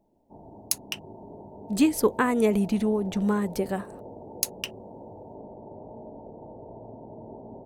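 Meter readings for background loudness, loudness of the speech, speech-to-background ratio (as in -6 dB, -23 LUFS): -44.0 LUFS, -26.0 LUFS, 18.0 dB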